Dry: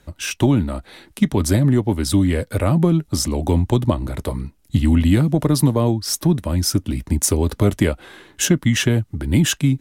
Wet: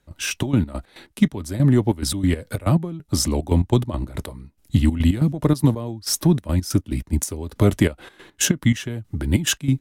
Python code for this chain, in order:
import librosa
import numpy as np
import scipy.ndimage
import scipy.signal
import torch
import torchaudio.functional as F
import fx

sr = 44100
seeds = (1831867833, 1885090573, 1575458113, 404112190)

y = fx.dmg_crackle(x, sr, seeds[0], per_s=89.0, level_db=-49.0, at=(5.9, 6.54), fade=0.02)
y = fx.step_gate(y, sr, bpm=141, pattern='.xxx.x.x.x.x..', floor_db=-12.0, edge_ms=4.5)
y = fx.band_widen(y, sr, depth_pct=70, at=(2.59, 3.0))